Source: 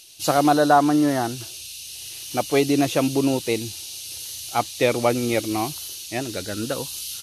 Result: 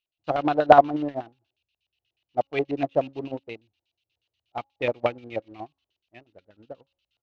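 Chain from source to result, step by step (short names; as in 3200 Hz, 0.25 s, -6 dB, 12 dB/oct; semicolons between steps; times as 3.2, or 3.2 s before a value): low shelf 79 Hz +4.5 dB; de-hum 275.3 Hz, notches 36; LFO low-pass square 8.3 Hz 710–2800 Hz; in parallel at -7.5 dB: crossover distortion -29 dBFS; on the sum: air absorption 89 m; upward expander 2.5:1, over -30 dBFS; gain -1.5 dB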